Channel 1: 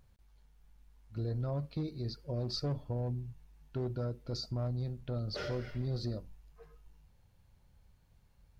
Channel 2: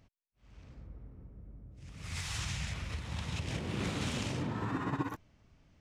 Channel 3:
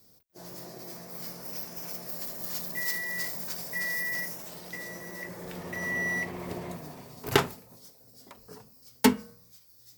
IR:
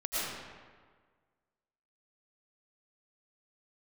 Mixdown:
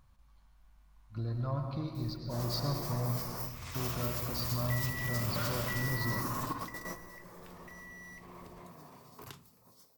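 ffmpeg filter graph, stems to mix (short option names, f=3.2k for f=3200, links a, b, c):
-filter_complex "[0:a]equalizer=f=430:w=3.8:g=-11.5,volume=-2dB,asplit=3[a][b][c];[b]volume=-8.5dB[d];[1:a]adelay=1500,volume=-8dB,asplit=2[e][f];[f]volume=-17.5dB[g];[2:a]acrossover=split=230|3000[h][i][j];[i]acompressor=threshold=-38dB:ratio=6[k];[h][k][j]amix=inputs=3:normalize=0,acompressor=threshold=-39dB:ratio=4,adelay=1950,volume=2.5dB[l];[c]apad=whole_len=526048[m];[l][m]sidechaingate=range=-12dB:threshold=-58dB:ratio=16:detection=peak[n];[3:a]atrim=start_sample=2205[o];[d][g]amix=inputs=2:normalize=0[p];[p][o]afir=irnorm=-1:irlink=0[q];[a][e][n][q]amix=inputs=4:normalize=0,equalizer=f=1.1k:t=o:w=0.44:g=11"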